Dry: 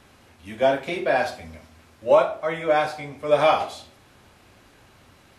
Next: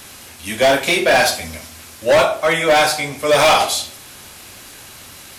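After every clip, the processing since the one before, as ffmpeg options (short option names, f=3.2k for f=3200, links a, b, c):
-af "crystalizer=i=5.5:c=0,asoftclip=type=hard:threshold=-17.5dB,bandreject=f=50:t=h:w=6,bandreject=f=100:t=h:w=6,bandreject=f=150:t=h:w=6,volume=8.5dB"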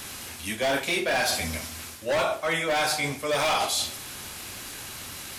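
-af "equalizer=f=590:t=o:w=0.77:g=-2.5,areverse,acompressor=threshold=-25dB:ratio=4,areverse"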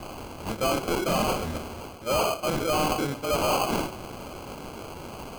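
-af "acrusher=samples=24:mix=1:aa=0.000001"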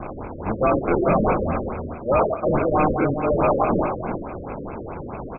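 -filter_complex "[0:a]asplit=2[a][b];[b]aecho=0:1:359:0.376[c];[a][c]amix=inputs=2:normalize=0,afftfilt=real='re*lt(b*sr/1024,570*pow(2700/570,0.5+0.5*sin(2*PI*4.7*pts/sr)))':imag='im*lt(b*sr/1024,570*pow(2700/570,0.5+0.5*sin(2*PI*4.7*pts/sr)))':win_size=1024:overlap=0.75,volume=7dB"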